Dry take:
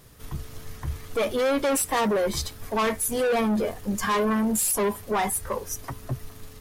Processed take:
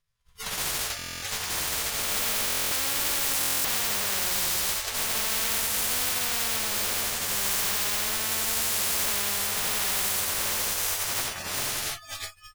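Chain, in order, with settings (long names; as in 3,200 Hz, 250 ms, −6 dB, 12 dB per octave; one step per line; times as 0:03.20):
peak hold with a rise ahead of every peak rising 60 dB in 0.60 s
on a send: flutter between parallel walls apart 7.7 metres, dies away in 0.37 s
on the sum: bad sample-rate conversion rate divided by 2×, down filtered, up hold
high-shelf EQ 6,200 Hz −11 dB
double-tracking delay 20 ms −13 dB
time stretch by phase vocoder 1.9×
downward expander −29 dBFS
guitar amp tone stack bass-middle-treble 10-0-10
noise reduction from a noise print of the clip's start 25 dB
in parallel at −2 dB: compressor whose output falls as the input rises −39 dBFS
on the sum: buffer that repeats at 0:00.97/0:02.46/0:03.39, samples 1,024, times 10
every bin compressed towards the loudest bin 10 to 1
level +7 dB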